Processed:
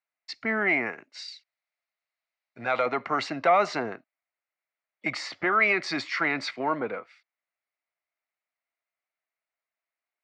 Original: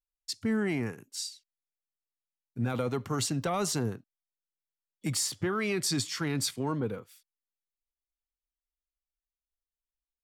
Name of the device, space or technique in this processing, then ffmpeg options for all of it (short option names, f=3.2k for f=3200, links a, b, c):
phone earpiece: -filter_complex "[0:a]asettb=1/sr,asplit=3[a][b][c];[a]atrim=end=1.284[d];[b]atrim=start=1.28:end=2.86,asetpts=PTS-STARTPTS,afade=t=in:d=0.004:c=qsin,afade=t=out:st=1.576:d=0.004:c=qsin,equalizer=f=250:t=o:w=1:g=-8,equalizer=f=4k:t=o:w=1:g=5,equalizer=f=8k:t=o:w=1:g=9[e];[c]atrim=start=2.856[f];[d][e]acrossfade=d=0.004:c1=hsin:c2=qsin[g];[g][f]acrossfade=d=0.004:c1=qsin:c2=hsin,highpass=430,equalizer=f=440:t=q:w=4:g=-5,equalizer=f=660:t=q:w=4:g=9,equalizer=f=1.3k:t=q:w=4:g=4,equalizer=f=2.1k:t=q:w=4:g=10,equalizer=f=3.3k:t=q:w=4:g=-10,lowpass=f=3.8k:w=0.5412,lowpass=f=3.8k:w=1.3066,volume=7.5dB"